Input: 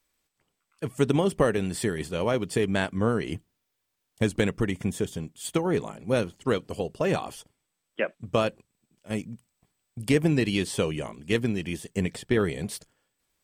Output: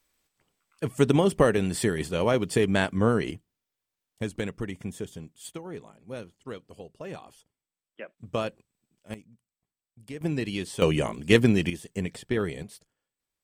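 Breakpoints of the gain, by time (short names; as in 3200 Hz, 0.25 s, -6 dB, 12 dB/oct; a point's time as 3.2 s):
+2 dB
from 3.31 s -7 dB
from 5.52 s -13.5 dB
from 8.18 s -5 dB
from 9.14 s -17 dB
from 10.21 s -5.5 dB
from 10.82 s +6.5 dB
from 11.7 s -3.5 dB
from 12.63 s -11.5 dB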